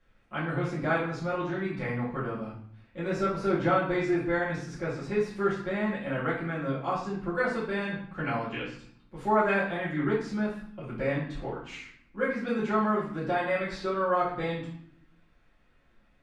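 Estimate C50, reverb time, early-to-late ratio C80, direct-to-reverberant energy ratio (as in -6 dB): 4.0 dB, 0.65 s, 7.5 dB, -10.5 dB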